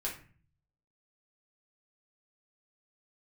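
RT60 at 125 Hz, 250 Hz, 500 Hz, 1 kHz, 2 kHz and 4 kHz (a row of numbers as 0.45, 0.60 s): 0.90, 0.70, 0.40, 0.40, 0.45, 0.30 s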